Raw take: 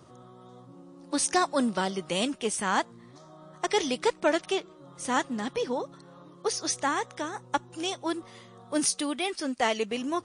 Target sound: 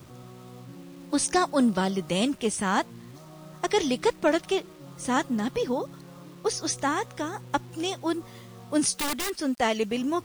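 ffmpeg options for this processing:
-filter_complex "[0:a]lowshelf=f=220:g=11.5,acrusher=bits=8:mix=0:aa=0.000001,asettb=1/sr,asplit=3[a][b][c];[a]atrim=end=8.964[d];[b]atrim=start=8.96:end=9.39,asetpts=PTS-STARTPTS,afade=t=in:d=0.004:c=qsin,afade=t=out:st=0.426:d=0.004:c=qsin,aeval=exprs='(mod(14.1*val(0)+1,2)-1)/14.1':c=same[e];[c]atrim=start=9.386[f];[d][e]acrossfade=d=0.004:c1=hsin:c2=qsin[g];[g][f]acrossfade=d=0.004:c1=qsin:c2=hsin"

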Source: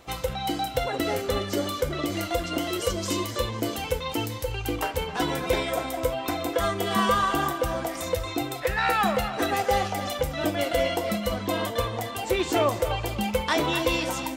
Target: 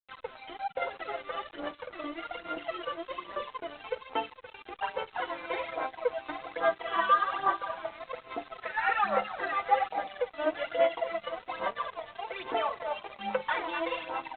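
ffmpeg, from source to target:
-filter_complex "[0:a]highpass=700,lowpass=2.1k,asplit=2[a][b];[b]adelay=48,volume=-11dB[c];[a][c]amix=inputs=2:normalize=0,aphaser=in_gain=1:out_gain=1:delay=3.4:decay=0.67:speed=1.2:type=sinusoidal,areverse,acompressor=mode=upward:threshold=-32dB:ratio=2.5,areverse,afftfilt=real='re*gte(hypot(re,im),0.0158)':imag='im*gte(hypot(re,im),0.0158)':win_size=1024:overlap=0.75,flanger=delay=4.5:depth=2:regen=13:speed=0.24:shape=sinusoidal,aresample=8000,aeval=exprs='sgn(val(0))*max(abs(val(0))-0.00668,0)':c=same,aresample=44100" -ar 48000 -c:a libopus -b:a 64k

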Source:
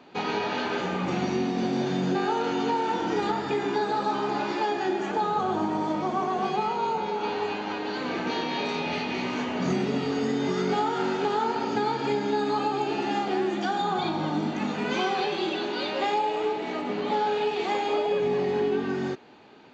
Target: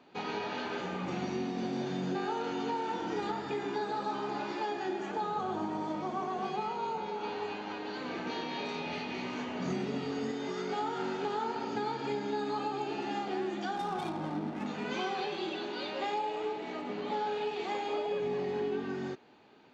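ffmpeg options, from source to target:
-filter_complex "[0:a]asettb=1/sr,asplit=3[a][b][c];[a]atrim=end=10.314[d];[b]atrim=start=10.31:end=10.82,asetpts=PTS-STARTPTS,afade=t=in:d=0.004:c=qsin,afade=t=out:st=0.506:d=0.004:c=qsin,bass=f=250:g=-8,treble=f=4k:g=0[e];[c]atrim=start=10.816[f];[d][e]acrossfade=d=0.004:c1=hsin:c2=qsin[g];[g][f]acrossfade=d=0.004:c1=qsin:c2=hsin,asettb=1/sr,asplit=3[h][i][j];[h]atrim=end=13.764[k];[i]atrim=start=13.76:end=14.66,asetpts=PTS-STARTPTS,afade=t=in:d=0.004:c=qsin,afade=t=out:st=0.896:d=0.004:c=qsin,adynamicsmooth=sensitivity=5:basefreq=830[l];[j]atrim=start=14.656[m];[k][l]acrossfade=d=0.004:c1=hsin:c2=qsin[n];[n][m]acrossfade=d=0.004:c1=qsin:c2=hsin,volume=-8dB"

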